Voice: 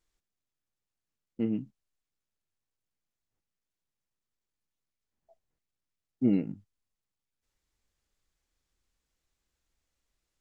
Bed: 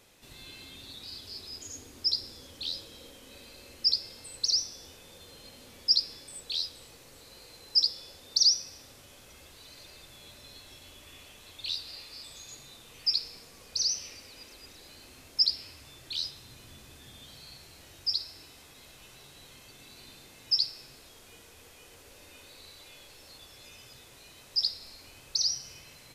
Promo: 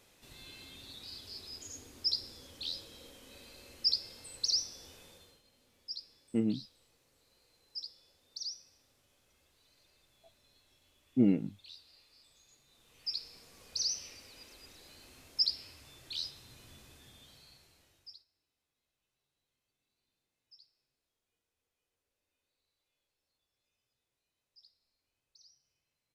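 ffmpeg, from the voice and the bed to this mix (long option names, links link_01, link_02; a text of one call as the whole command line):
ffmpeg -i stem1.wav -i stem2.wav -filter_complex "[0:a]adelay=4950,volume=-0.5dB[link_01];[1:a]volume=9.5dB,afade=type=out:start_time=5.02:duration=0.4:silence=0.188365,afade=type=in:start_time=12.66:duration=1.01:silence=0.211349,afade=type=out:start_time=16.75:duration=1.5:silence=0.0334965[link_02];[link_01][link_02]amix=inputs=2:normalize=0" out.wav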